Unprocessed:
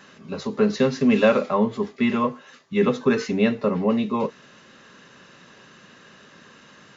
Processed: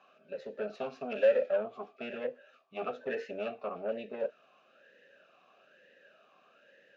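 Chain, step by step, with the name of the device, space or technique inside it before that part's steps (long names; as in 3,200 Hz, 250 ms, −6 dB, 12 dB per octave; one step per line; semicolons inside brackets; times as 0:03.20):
talk box (tube saturation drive 19 dB, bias 0.7; formant filter swept between two vowels a-e 1.1 Hz)
level +3 dB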